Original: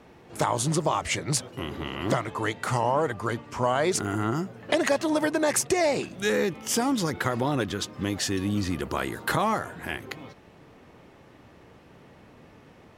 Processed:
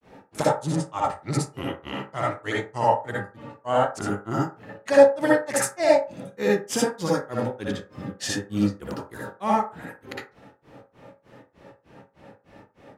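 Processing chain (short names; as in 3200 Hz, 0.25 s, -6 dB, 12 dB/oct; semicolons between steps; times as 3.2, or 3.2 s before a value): grains 0.178 s, grains 3.3/s, spray 11 ms, pitch spread up and down by 0 st; reverb RT60 0.35 s, pre-delay 57 ms, DRR -6.5 dB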